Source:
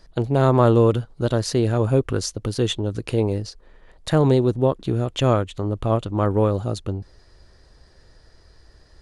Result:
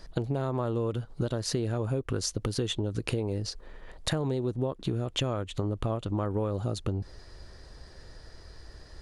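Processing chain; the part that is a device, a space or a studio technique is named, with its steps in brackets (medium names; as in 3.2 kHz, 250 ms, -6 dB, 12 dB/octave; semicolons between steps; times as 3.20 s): serial compression, peaks first (compression, threshold -26 dBFS, peak gain reduction 14.5 dB; compression 2:1, threshold -32 dBFS, peak gain reduction 5.5 dB); trim +3.5 dB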